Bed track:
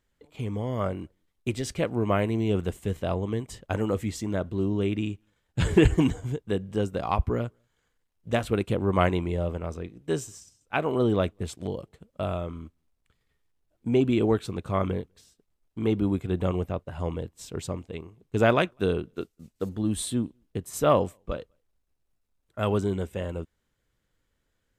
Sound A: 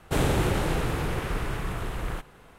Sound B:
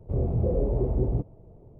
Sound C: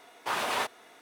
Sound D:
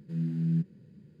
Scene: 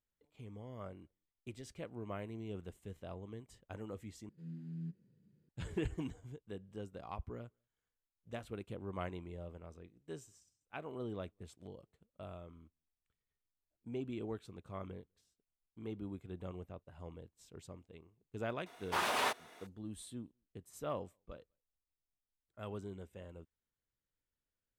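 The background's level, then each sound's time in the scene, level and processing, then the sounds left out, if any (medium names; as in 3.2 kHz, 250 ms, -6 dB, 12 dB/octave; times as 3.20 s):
bed track -19 dB
4.29 s: replace with D -16 dB
18.66 s: add C -3.5 dB
not used: A, B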